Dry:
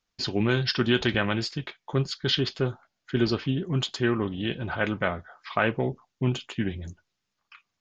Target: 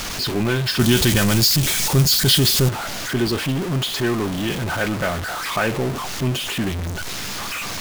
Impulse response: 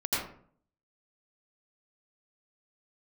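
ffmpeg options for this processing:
-filter_complex "[0:a]aeval=exprs='val(0)+0.5*0.0841*sgn(val(0))':c=same,asettb=1/sr,asplit=3[s0][s1][s2];[s0]atrim=end=0.794[s3];[s1]atrim=start=0.79:end=2.69,asetpts=PTS-STARTPTS,afade=t=in:d=0.004:c=qsin,afade=t=out:st=1.896:d=0.004:c=qsin,bass=f=250:g=8,treble=f=4000:g=13[s4];[s2]atrim=start=2.686[s5];[s3][s4]acrossfade=d=0.004:c1=hsin:c2=qsin[s6];[s6][s5]acrossfade=d=0.004:c1=qsin:c2=hsin"

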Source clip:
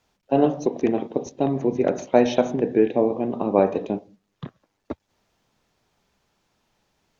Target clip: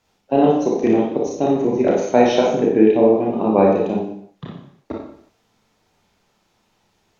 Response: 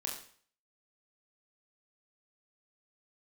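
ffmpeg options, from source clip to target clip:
-filter_complex "[1:a]atrim=start_sample=2205,afade=t=out:st=0.33:d=0.01,atrim=end_sample=14994,asetrate=33075,aresample=44100[s0];[0:a][s0]afir=irnorm=-1:irlink=0,volume=1.33"

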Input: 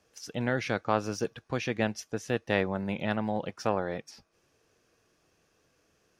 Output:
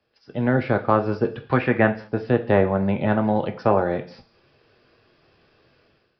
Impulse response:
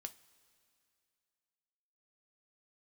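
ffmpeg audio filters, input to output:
-filter_complex "[0:a]asettb=1/sr,asplit=3[s0][s1][s2];[s0]atrim=end=1.494[s3];[s1]atrim=start=1.49:end=1.92,asetpts=PTS-STARTPTS,afade=t=in:d=0.004:c=qsin,afade=t=out:st=0.426:d=0.004:c=qsin,equalizer=f=1900:t=o:w=1.8:g=9.5[s4];[s2]atrim=start=1.916[s5];[s3][s4]acrossfade=d=0.004:c1=hsin:c2=qsin[s6];[s6][s5]acrossfade=d=0.004:c1=qsin:c2=hsin[s7];[1:a]atrim=start_sample=2205,atrim=end_sample=6615,asetrate=30429,aresample=44100[s8];[s7][s8]afir=irnorm=-1:irlink=0,acrossover=split=270|1600[s9][s10][s11];[s11]acompressor=threshold=0.00141:ratio=5[s12];[s9][s10][s12]amix=inputs=3:normalize=0,aresample=11025,aresample=44100,dynaudnorm=f=110:g=7:m=4.73"

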